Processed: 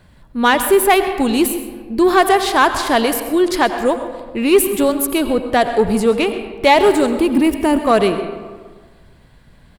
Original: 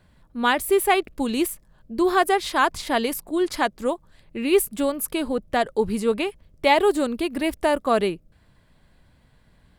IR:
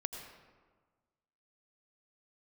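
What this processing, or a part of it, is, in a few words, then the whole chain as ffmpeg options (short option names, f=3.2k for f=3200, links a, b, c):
saturated reverb return: -filter_complex "[0:a]asettb=1/sr,asplit=3[a][b][c];[a]atrim=end=7.194[d];[b]atrim=start=7.19:end=7.86,asetpts=PTS-STARTPTS,afade=t=in:d=0.004:c=qsin,afade=t=out:st=0.666:d=0.004:c=qsin,equalizer=f=250:t=o:w=0.67:g=9,equalizer=f=630:t=o:w=0.67:g=-8,equalizer=f=1.6k:t=o:w=0.67:g=-6,equalizer=f=4k:t=o:w=0.67:g=-6[e];[c]atrim=start=7.856[f];[d][e]acrossfade=d=0.004:c1=hsin:c2=qsin[g];[g][f]acrossfade=d=0.004:c1=qsin:c2=hsin,asplit=2[h][i];[1:a]atrim=start_sample=2205[j];[i][j]afir=irnorm=-1:irlink=0,asoftclip=type=tanh:threshold=-19dB,volume=2dB[k];[h][k]amix=inputs=2:normalize=0,aecho=1:1:130:0.133,volume=2.5dB"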